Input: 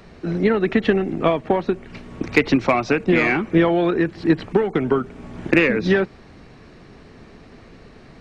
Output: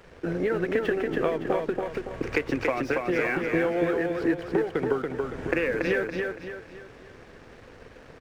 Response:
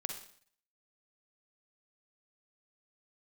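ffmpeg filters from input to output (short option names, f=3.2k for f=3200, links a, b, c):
-af "equalizer=f=200:t=o:w=0.33:g=-11,equalizer=f=500:t=o:w=0.33:g=9,equalizer=f=1.6k:t=o:w=0.33:g=7,equalizer=f=4k:t=o:w=0.33:g=-9,acompressor=threshold=-23dB:ratio=4,aeval=exprs='sgn(val(0))*max(abs(val(0))-0.00422,0)':c=same,aecho=1:1:282|564|846|1128|1410:0.668|0.267|0.107|0.0428|0.0171,volume=-1.5dB"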